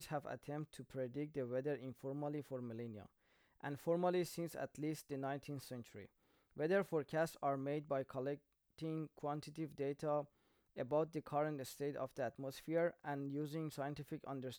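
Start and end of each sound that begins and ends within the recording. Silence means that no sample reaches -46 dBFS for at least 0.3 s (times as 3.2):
3.64–6.02
6.57–8.35
8.78–10.22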